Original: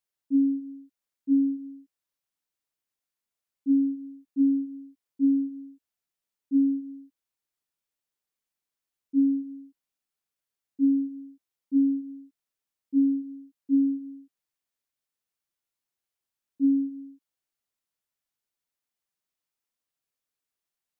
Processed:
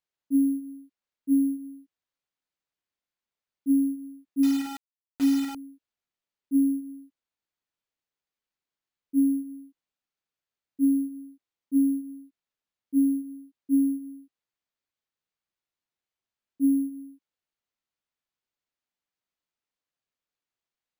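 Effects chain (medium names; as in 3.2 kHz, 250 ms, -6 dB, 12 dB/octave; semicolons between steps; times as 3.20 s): careless resampling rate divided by 4×, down filtered, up hold; 4.43–5.55 s: word length cut 6-bit, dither none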